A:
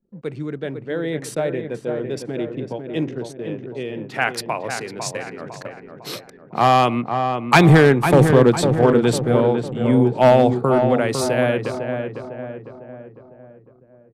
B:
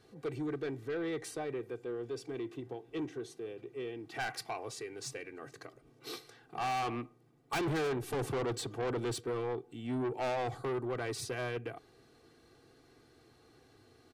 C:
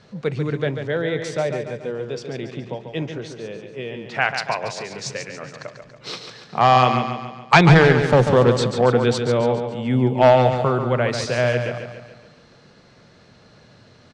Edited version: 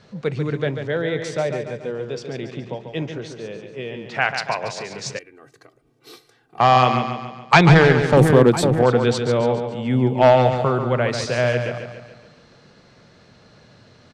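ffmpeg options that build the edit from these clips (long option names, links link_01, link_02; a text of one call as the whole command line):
ffmpeg -i take0.wav -i take1.wav -i take2.wav -filter_complex "[2:a]asplit=3[link_01][link_02][link_03];[link_01]atrim=end=5.192[link_04];[1:a]atrim=start=5.188:end=6.602[link_05];[link_02]atrim=start=6.598:end=8.172[link_06];[0:a]atrim=start=8.168:end=8.832[link_07];[link_03]atrim=start=8.828[link_08];[link_04][link_05]acrossfade=duration=0.004:curve1=hsin:curve2=hsin[link_09];[link_09][link_06]acrossfade=duration=0.004:curve1=hsin:curve2=hsin[link_10];[link_10][link_07]acrossfade=duration=0.004:curve1=hsin:curve2=hsin[link_11];[link_11][link_08]acrossfade=duration=0.004:curve1=hsin:curve2=hsin" out.wav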